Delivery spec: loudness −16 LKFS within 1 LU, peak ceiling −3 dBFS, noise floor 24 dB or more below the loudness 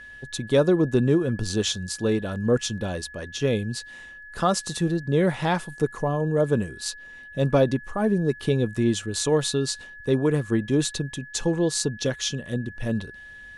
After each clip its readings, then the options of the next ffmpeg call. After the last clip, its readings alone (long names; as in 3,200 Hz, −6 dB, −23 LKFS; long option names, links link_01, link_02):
interfering tone 1,700 Hz; level of the tone −41 dBFS; integrated loudness −25.0 LKFS; sample peak −8.0 dBFS; target loudness −16.0 LKFS
→ -af "bandreject=frequency=1700:width=30"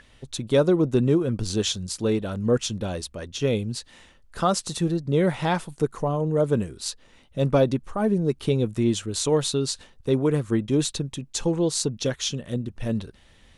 interfering tone none found; integrated loudness −25.0 LKFS; sample peak −8.0 dBFS; target loudness −16.0 LKFS
→ -af "volume=9dB,alimiter=limit=-3dB:level=0:latency=1"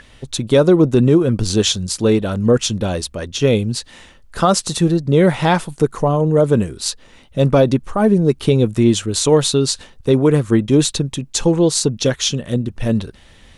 integrated loudness −16.5 LKFS; sample peak −3.0 dBFS; background noise floor −46 dBFS